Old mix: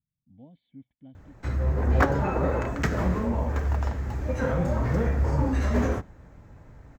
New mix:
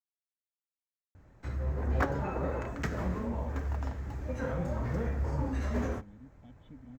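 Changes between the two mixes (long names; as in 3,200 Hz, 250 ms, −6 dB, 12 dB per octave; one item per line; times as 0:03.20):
speech: entry +2.80 s
background −8.0 dB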